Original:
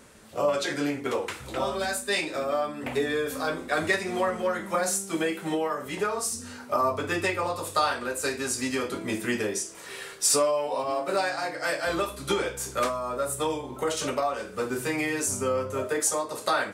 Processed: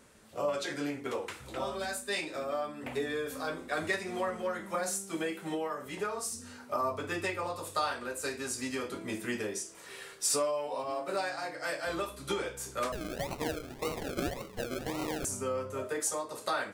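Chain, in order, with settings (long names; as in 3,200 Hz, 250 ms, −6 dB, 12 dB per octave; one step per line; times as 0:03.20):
0:12.92–0:15.25: sample-and-hold swept by an LFO 37×, swing 60% 1.8 Hz
level −7 dB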